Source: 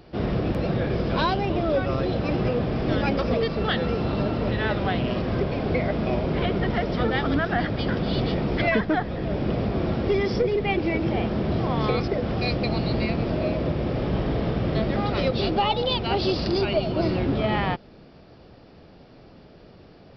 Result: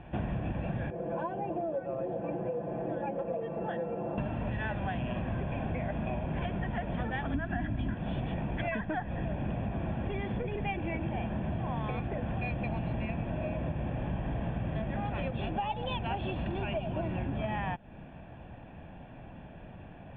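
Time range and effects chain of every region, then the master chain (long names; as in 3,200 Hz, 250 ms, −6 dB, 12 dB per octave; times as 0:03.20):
0:00.90–0:04.18: resonant band-pass 480 Hz, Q 2.1 + comb filter 5.9 ms, depth 69%
0:07.34–0:07.94: low shelf with overshoot 330 Hz +7 dB, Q 1.5 + comb filter 3 ms, depth 43%
whole clip: Butterworth low-pass 3,200 Hz 72 dB per octave; comb filter 1.2 ms, depth 60%; downward compressor, threshold −31 dBFS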